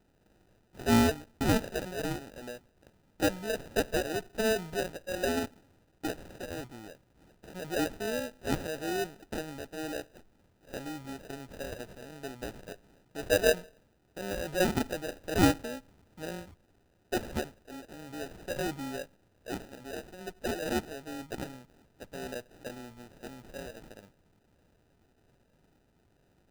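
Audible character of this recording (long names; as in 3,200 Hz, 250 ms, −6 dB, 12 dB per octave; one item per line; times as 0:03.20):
aliases and images of a low sample rate 1,100 Hz, jitter 0%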